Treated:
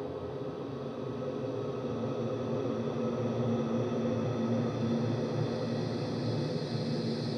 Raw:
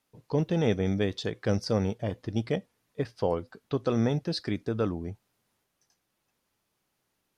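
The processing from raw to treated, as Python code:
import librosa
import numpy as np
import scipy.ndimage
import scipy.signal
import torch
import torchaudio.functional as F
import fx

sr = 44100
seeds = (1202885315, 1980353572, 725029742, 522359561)

y = x + 10.0 ** (-7.0 / 20.0) * np.pad(x, (int(621 * sr / 1000.0), 0))[:len(x)]
y = fx.paulstretch(y, sr, seeds[0], factor=11.0, window_s=1.0, from_s=3.57)
y = F.gain(torch.from_numpy(y), -5.5).numpy()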